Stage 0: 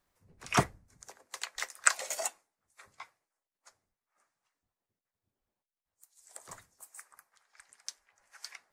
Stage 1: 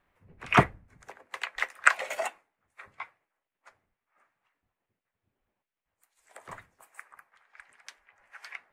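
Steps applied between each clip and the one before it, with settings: resonant high shelf 3.7 kHz -13.5 dB, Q 1.5; trim +6 dB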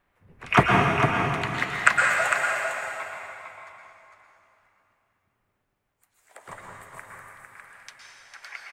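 delay 453 ms -6.5 dB; reverberation RT60 2.7 s, pre-delay 107 ms, DRR -1.5 dB; trim +2 dB

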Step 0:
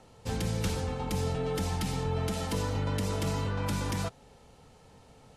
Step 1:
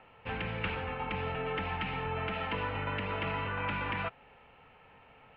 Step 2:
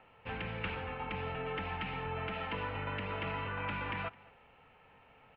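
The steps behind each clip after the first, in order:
elliptic low-pass 2.7 kHz, stop band 60 dB; tilt shelf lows -9 dB, about 860 Hz; trim +1.5 dB
delay 213 ms -22.5 dB; trim -3.5 dB

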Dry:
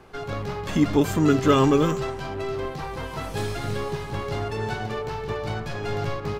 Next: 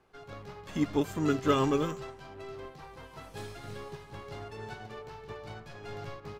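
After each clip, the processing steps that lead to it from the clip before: bass shelf 340 Hz -3 dB; upward expansion 1.5:1, over -36 dBFS; trim -5.5 dB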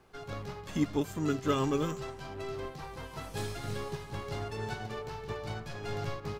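gain riding within 4 dB 0.5 s; tone controls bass +3 dB, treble +4 dB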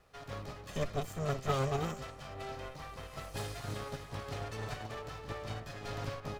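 comb filter that takes the minimum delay 1.6 ms; trim -1.5 dB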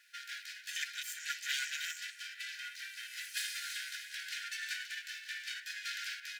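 brick-wall FIR high-pass 1.4 kHz; trim +8.5 dB

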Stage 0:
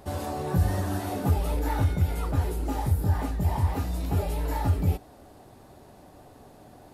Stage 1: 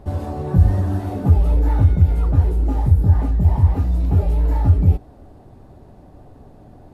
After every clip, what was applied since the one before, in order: tilt EQ -3 dB/octave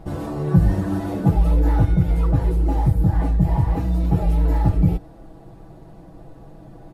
comb 6.1 ms, depth 87%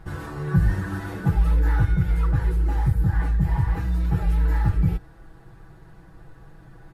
fifteen-band graphic EQ 250 Hz -12 dB, 630 Hz -11 dB, 1.6 kHz +10 dB; trim -2 dB

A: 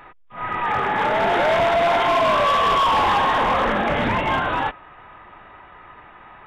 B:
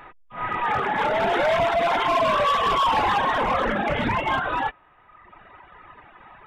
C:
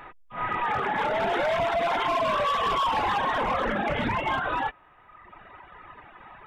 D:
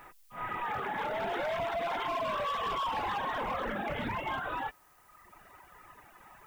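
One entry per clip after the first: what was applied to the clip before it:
reverb removal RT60 1.4 s
compression 2.5:1, threshold -25 dBFS, peak gain reduction 5 dB
added noise blue -59 dBFS; trim -8 dB

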